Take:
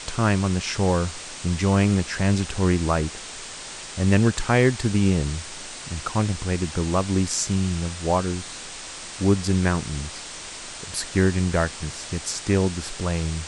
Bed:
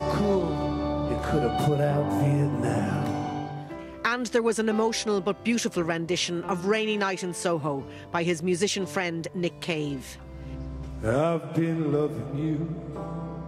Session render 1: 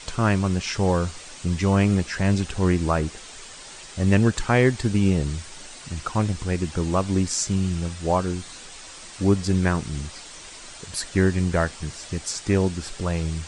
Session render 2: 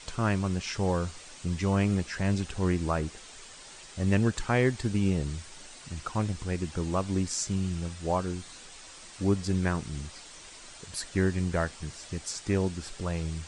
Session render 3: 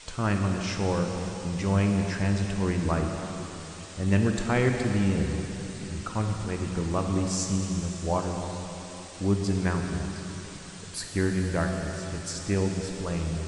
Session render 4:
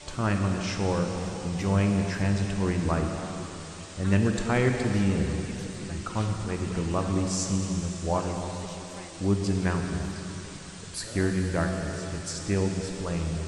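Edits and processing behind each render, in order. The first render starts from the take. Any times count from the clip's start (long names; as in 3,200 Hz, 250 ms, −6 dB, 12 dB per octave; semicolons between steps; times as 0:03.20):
broadband denoise 7 dB, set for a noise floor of −37 dBFS
level −6.5 dB
dense smooth reverb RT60 3.9 s, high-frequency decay 0.95×, DRR 2.5 dB
mix in bed −20 dB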